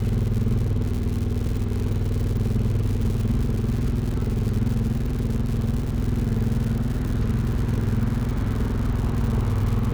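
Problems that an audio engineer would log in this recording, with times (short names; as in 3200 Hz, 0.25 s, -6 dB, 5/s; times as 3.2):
crackle 170/s -28 dBFS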